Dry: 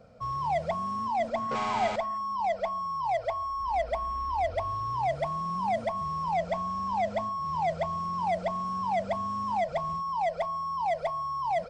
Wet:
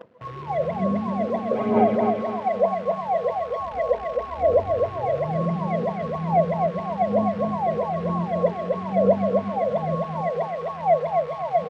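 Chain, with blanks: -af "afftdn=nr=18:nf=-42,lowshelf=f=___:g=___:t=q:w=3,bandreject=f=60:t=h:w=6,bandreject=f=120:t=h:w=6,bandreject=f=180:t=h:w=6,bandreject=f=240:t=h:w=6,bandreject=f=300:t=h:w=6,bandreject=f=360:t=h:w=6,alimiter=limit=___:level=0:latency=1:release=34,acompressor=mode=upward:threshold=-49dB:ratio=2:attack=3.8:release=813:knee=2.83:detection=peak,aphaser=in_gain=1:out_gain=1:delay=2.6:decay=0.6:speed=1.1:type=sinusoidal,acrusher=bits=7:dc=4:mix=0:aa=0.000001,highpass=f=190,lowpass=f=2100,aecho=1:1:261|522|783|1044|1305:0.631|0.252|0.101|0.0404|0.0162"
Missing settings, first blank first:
660, 11.5, -14dB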